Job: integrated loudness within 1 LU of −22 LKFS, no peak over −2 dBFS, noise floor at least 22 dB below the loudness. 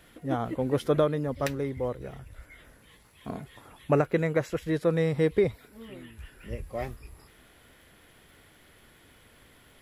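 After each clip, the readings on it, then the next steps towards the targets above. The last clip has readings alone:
crackle rate 36 per second; integrated loudness −28.5 LKFS; sample peak −11.0 dBFS; target loudness −22.0 LKFS
→ click removal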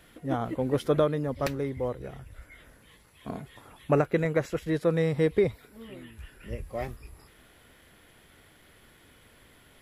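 crackle rate 0.10 per second; integrated loudness −28.5 LKFS; sample peak −11.0 dBFS; target loudness −22.0 LKFS
→ level +6.5 dB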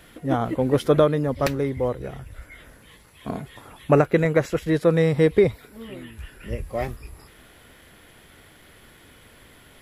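integrated loudness −22.0 LKFS; sample peak −4.5 dBFS; background noise floor −51 dBFS

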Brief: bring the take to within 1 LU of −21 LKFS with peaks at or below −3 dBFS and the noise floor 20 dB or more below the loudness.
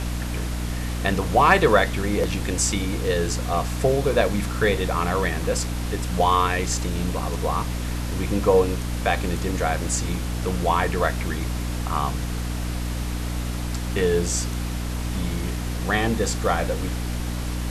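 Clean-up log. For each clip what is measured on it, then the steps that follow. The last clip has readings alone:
mains hum 60 Hz; hum harmonics up to 300 Hz; level of the hum −25 dBFS; background noise floor −28 dBFS; target noise floor −44 dBFS; integrated loudness −24.0 LKFS; sample peak −4.0 dBFS; target loudness −21.0 LKFS
→ mains-hum notches 60/120/180/240/300 Hz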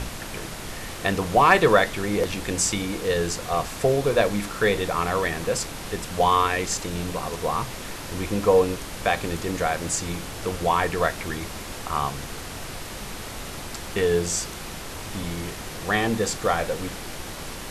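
mains hum none found; background noise floor −36 dBFS; target noise floor −45 dBFS
→ noise reduction from a noise print 9 dB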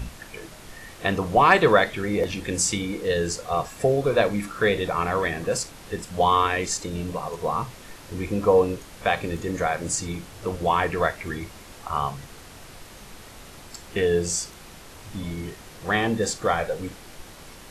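background noise floor −45 dBFS; integrated loudness −24.5 LKFS; sample peak −3.5 dBFS; target loudness −21.0 LKFS
→ level +3.5 dB
brickwall limiter −3 dBFS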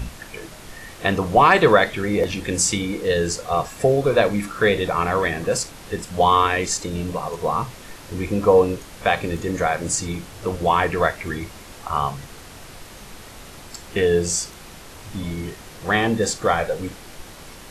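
integrated loudness −21.0 LKFS; sample peak −3.0 dBFS; background noise floor −41 dBFS

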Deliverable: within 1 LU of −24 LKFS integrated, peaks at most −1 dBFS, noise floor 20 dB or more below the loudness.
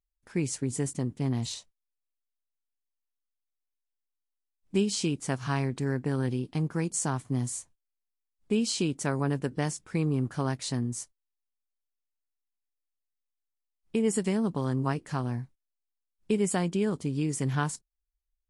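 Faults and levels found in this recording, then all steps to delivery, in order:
integrated loudness −30.0 LKFS; sample peak −14.0 dBFS; target loudness −24.0 LKFS
→ level +6 dB

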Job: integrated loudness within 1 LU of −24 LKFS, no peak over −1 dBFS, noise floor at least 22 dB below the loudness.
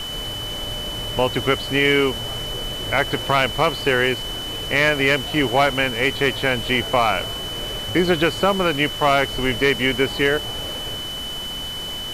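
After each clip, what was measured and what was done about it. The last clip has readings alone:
interfering tone 3,000 Hz; level of the tone −28 dBFS; background noise floor −29 dBFS; target noise floor −43 dBFS; integrated loudness −20.5 LKFS; sample peak −5.5 dBFS; target loudness −24.0 LKFS
→ notch filter 3,000 Hz, Q 30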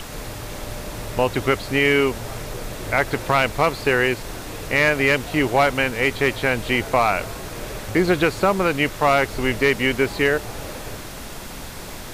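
interfering tone none found; background noise floor −34 dBFS; target noise floor −42 dBFS
→ noise reduction from a noise print 8 dB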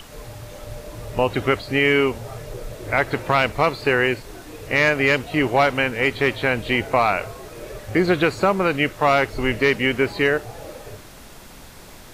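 background noise floor −42 dBFS; integrated loudness −20.0 LKFS; sample peak −6.0 dBFS; target loudness −24.0 LKFS
→ level −4 dB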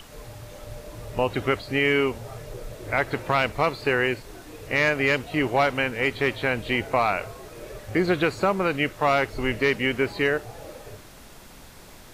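integrated loudness −24.0 LKFS; sample peak −10.0 dBFS; background noise floor −46 dBFS

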